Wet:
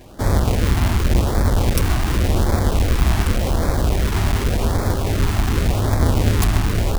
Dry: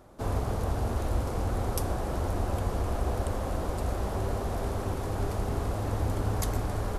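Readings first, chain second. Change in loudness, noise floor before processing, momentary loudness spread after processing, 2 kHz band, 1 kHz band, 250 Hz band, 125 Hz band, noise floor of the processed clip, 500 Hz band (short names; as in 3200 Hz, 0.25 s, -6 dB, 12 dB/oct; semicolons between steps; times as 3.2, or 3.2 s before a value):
+12.0 dB, -34 dBFS, 2 LU, +15.0 dB, +8.5 dB, +12.5 dB, +12.5 dB, -22 dBFS, +8.0 dB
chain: half-waves squared off; LFO notch sine 0.88 Hz 470–2900 Hz; gain +7.5 dB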